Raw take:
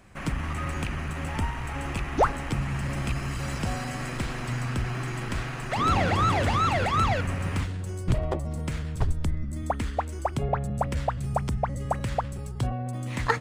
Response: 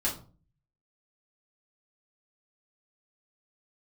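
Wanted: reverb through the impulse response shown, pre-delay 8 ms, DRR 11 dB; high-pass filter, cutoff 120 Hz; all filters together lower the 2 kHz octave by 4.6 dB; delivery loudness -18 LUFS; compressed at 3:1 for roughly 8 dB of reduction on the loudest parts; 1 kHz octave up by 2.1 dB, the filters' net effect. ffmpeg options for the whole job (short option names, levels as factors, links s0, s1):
-filter_complex "[0:a]highpass=120,equalizer=f=1000:t=o:g=5,equalizer=f=2000:t=o:g=-7.5,acompressor=threshold=0.0398:ratio=3,asplit=2[s0][s1];[1:a]atrim=start_sample=2205,adelay=8[s2];[s1][s2]afir=irnorm=-1:irlink=0,volume=0.126[s3];[s0][s3]amix=inputs=2:normalize=0,volume=5.31"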